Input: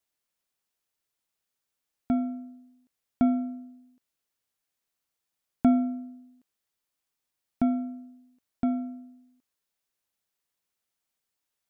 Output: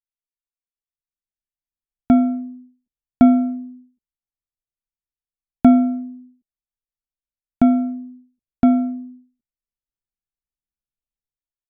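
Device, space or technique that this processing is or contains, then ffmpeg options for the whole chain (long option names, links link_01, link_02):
voice memo with heavy noise removal: -af "anlmdn=0.0158,dynaudnorm=framelen=930:gausssize=3:maxgain=16dB"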